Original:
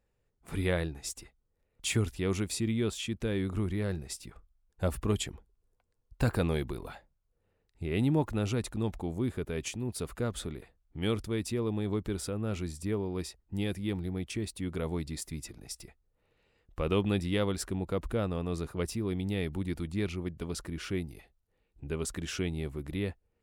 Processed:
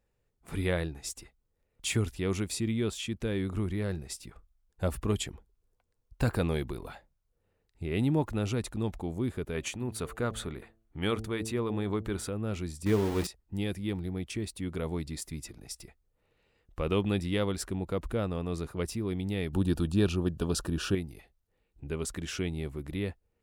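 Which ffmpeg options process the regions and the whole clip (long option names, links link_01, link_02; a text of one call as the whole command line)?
ffmpeg -i in.wav -filter_complex "[0:a]asettb=1/sr,asplit=3[link_01][link_02][link_03];[link_01]atrim=end=9.544[link_04];[link_02]atrim=start=9.54:end=12.29,asetpts=PTS-STARTPTS,afade=type=in:duration=0.004:curve=qsin,afade=type=out:start_time=2.746:duration=0.004:curve=qsin,equalizer=frequency=1300:width_type=o:width=1.8:gain=6,bandreject=frequency=5100:width=10,bandreject=frequency=111.3:width_type=h:width=4,bandreject=frequency=222.6:width_type=h:width=4,bandreject=frequency=333.9:width_type=h:width=4,bandreject=frequency=445.2:width_type=h:width=4,bandreject=frequency=556.5:width_type=h:width=4,bandreject=frequency=667.8:width_type=h:width=4,bandreject=frequency=779.1:width_type=h:width=4[link_05];[link_03]atrim=start=12.286[link_06];[link_04][link_05]acrossfade=duration=0.004:curve1=hsin:curve2=qsin[link_07];[link_07][link_06]acrossfade=duration=0.004:curve1=qsin:curve2=hsin,asettb=1/sr,asplit=3[link_08][link_09][link_10];[link_08]atrim=end=12.864[link_11];[link_09]atrim=start=12.86:end=13.27,asetpts=PTS-STARTPTS,afade=type=in:duration=0.004:curve=qsin,afade=type=out:start_time=0.406:duration=0.004:curve=qsin,bandreject=frequency=60:width_type=h:width=6,bandreject=frequency=120:width_type=h:width=6,bandreject=frequency=180:width_type=h:width=6,bandreject=frequency=240:width_type=h:width=6,bandreject=frequency=300:width_type=h:width=6,bandreject=frequency=360:width_type=h:width=6,bandreject=frequency=420:width_type=h:width=6,bandreject=frequency=480:width_type=h:width=6,bandreject=frequency=540:width_type=h:width=6,bandreject=frequency=600:width_type=h:width=6,acontrast=59,aeval=exprs='val(0)*gte(abs(val(0)),0.0188)':channel_layout=same[link_12];[link_10]atrim=start=13.266[link_13];[link_11][link_12]acrossfade=duration=0.004:curve1=hsin:curve2=qsin[link_14];[link_14][link_13]acrossfade=duration=0.004:curve1=qsin:curve2=hsin,asettb=1/sr,asplit=3[link_15][link_16][link_17];[link_15]atrim=end=19.534[link_18];[link_16]atrim=start=19.53:end=20.95,asetpts=PTS-STARTPTS,afade=type=in:duration=0.004:curve=qsin,afade=type=out:start_time=1.416:duration=0.004:curve=qsin,asuperstop=centerf=2100:order=4:qfactor=3,acontrast=68[link_19];[link_17]atrim=start=20.946[link_20];[link_18][link_19]acrossfade=duration=0.004:curve1=hsin:curve2=qsin[link_21];[link_21][link_20]acrossfade=duration=0.004:curve1=qsin:curve2=hsin" out.wav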